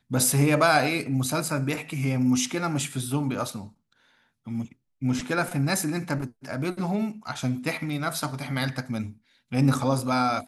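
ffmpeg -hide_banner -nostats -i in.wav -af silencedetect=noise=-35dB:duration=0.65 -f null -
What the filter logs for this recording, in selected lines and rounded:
silence_start: 3.67
silence_end: 4.47 | silence_duration: 0.80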